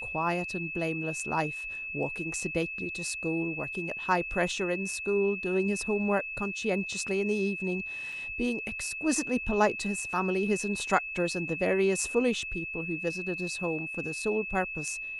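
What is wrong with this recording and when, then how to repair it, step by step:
whistle 2,600 Hz −35 dBFS
0:08.12: drop-out 4.7 ms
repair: notch filter 2,600 Hz, Q 30
repair the gap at 0:08.12, 4.7 ms

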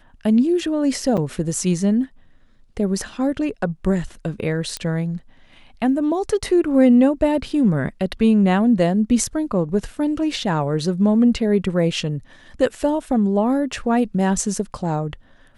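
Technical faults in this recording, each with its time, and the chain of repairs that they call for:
0:01.17–0:01.18: drop-out 6.3 ms
0:04.77: click −11 dBFS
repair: click removal
repair the gap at 0:01.17, 6.3 ms

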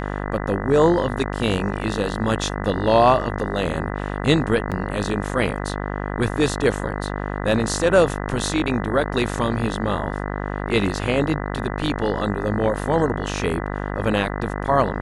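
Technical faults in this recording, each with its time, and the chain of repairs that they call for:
mains buzz 50 Hz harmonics 40 −27 dBFS
0:04.71–0:04.72: drop-out 7.3 ms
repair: hum removal 50 Hz, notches 40
repair the gap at 0:04.71, 7.3 ms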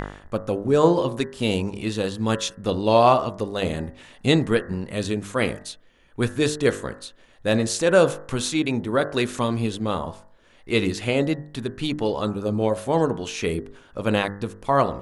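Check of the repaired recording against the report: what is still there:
none of them is left

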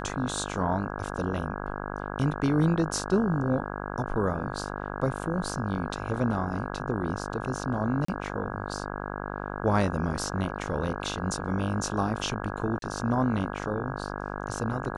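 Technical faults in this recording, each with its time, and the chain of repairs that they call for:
mains buzz 50 Hz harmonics 33 −35 dBFS
0:08.05–0:08.08: drop-out 34 ms
0:12.79–0:12.82: drop-out 32 ms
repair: hum removal 50 Hz, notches 33
repair the gap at 0:08.05, 34 ms
repair the gap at 0:12.79, 32 ms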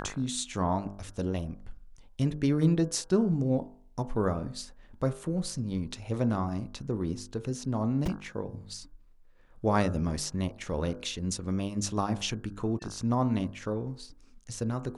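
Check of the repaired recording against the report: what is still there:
none of them is left

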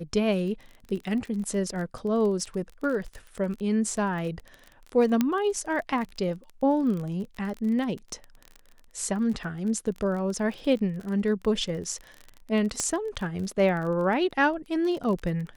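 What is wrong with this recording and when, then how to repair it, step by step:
surface crackle 28 per second −33 dBFS
0:05.21: click −10 dBFS
0:12.80: click −14 dBFS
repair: click removal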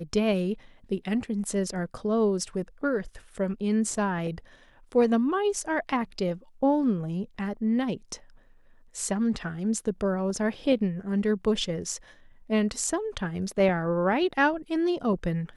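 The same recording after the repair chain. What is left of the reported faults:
none of them is left

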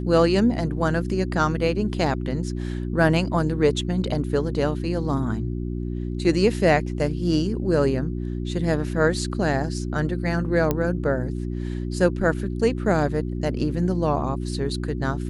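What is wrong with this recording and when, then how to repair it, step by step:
mains hum 60 Hz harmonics 6 −28 dBFS
0:10.71: click −9 dBFS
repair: click removal
hum removal 60 Hz, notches 6

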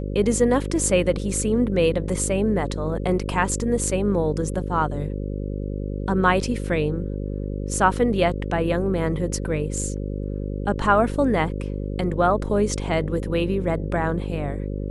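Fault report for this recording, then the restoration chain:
mains buzz 50 Hz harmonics 11 −28 dBFS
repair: hum removal 50 Hz, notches 11

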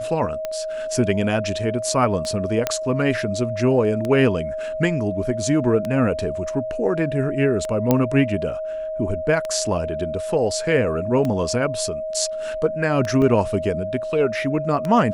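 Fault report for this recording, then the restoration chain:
scratch tick 33 1/3 rpm −13 dBFS
whistle 630 Hz −25 dBFS
0:02.67: click −5 dBFS
0:07.91: click −4 dBFS
0:13.22: drop-out 2.6 ms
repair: click removal
notch filter 630 Hz, Q 30
repair the gap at 0:13.22, 2.6 ms

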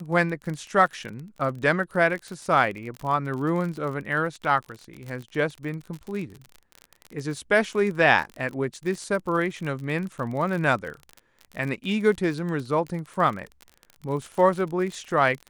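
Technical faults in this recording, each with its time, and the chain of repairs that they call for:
surface crackle 39 per second −31 dBFS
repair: click removal

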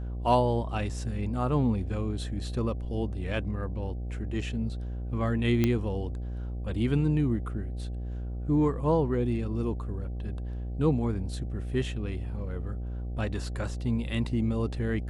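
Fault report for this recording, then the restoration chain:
mains buzz 60 Hz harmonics 13 −34 dBFS
0:05.64: click −12 dBFS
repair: click removal
hum removal 60 Hz, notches 13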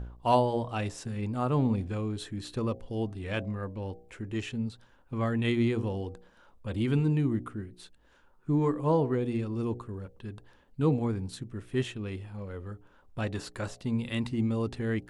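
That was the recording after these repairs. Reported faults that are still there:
none of them is left

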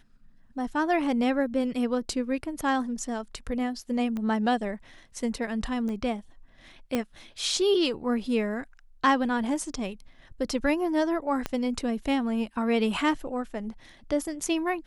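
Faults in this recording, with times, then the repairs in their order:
0:04.17: click −22 dBFS
0:05.89: click −25 dBFS
0:06.95: click −13 dBFS
0:11.46: click −14 dBFS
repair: click removal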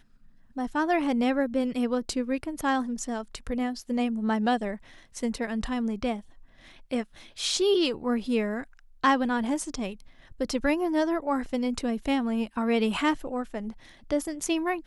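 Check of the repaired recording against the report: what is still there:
0:04.17: click
0:05.89: click
0:06.95: click
0:11.46: click

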